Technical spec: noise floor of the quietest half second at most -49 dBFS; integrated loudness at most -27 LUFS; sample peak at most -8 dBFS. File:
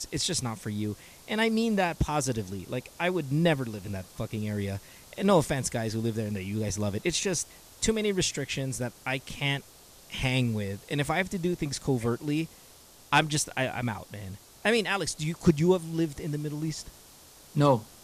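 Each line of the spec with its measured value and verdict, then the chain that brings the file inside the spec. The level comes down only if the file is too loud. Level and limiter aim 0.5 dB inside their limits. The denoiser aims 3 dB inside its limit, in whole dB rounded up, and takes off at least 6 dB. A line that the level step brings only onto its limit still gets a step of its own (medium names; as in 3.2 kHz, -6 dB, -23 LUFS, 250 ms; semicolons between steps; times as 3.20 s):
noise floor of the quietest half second -53 dBFS: pass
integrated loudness -29.0 LUFS: pass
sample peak -10.0 dBFS: pass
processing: none needed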